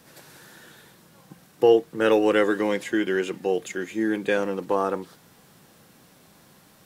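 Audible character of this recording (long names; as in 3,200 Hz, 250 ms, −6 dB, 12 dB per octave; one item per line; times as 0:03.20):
background noise floor −56 dBFS
spectral slope −3.5 dB per octave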